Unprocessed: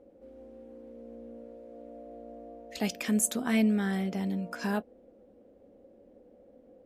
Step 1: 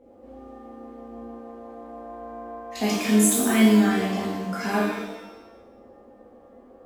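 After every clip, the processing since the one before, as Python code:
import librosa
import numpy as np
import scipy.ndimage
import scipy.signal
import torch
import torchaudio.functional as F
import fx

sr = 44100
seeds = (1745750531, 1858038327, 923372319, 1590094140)

y = fx.rev_shimmer(x, sr, seeds[0], rt60_s=1.0, semitones=7, shimmer_db=-8, drr_db=-7.0)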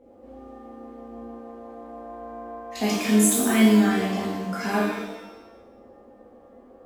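y = x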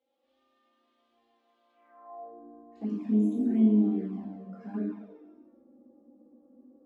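y = fx.env_flanger(x, sr, rest_ms=3.9, full_db=-16.5)
y = fx.filter_sweep_bandpass(y, sr, from_hz=3500.0, to_hz=270.0, start_s=1.71, end_s=2.48, q=3.1)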